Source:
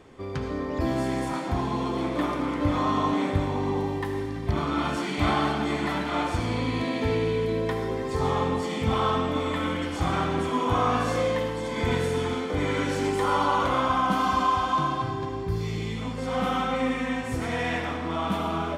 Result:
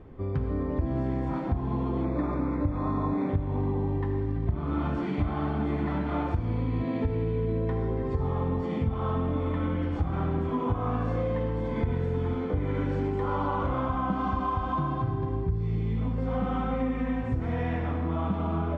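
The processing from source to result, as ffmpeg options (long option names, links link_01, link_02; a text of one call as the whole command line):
ffmpeg -i in.wav -filter_complex "[0:a]asettb=1/sr,asplit=3[link_01][link_02][link_03];[link_01]atrim=end=2.054[link_04];[link_02]atrim=start=2.05:end=3.29,asetpts=PTS-STARTPTS,afade=type=in:duration=0.004:curve=qsin,afade=type=out:start_time=1.236:duration=0.004:curve=qsin,asuperstop=centerf=3000:order=8:qfactor=3.6[link_05];[link_03]atrim=start=3.286[link_06];[link_04][link_05]acrossfade=duration=0.004:curve1=hsin:curve2=qsin[link_07];[link_07][link_06]acrossfade=duration=0.004:curve1=qsin:curve2=hsin,lowpass=frequency=1400:poles=1,aemphasis=mode=reproduction:type=bsi,acompressor=threshold=-22dB:ratio=6,volume=-2dB" out.wav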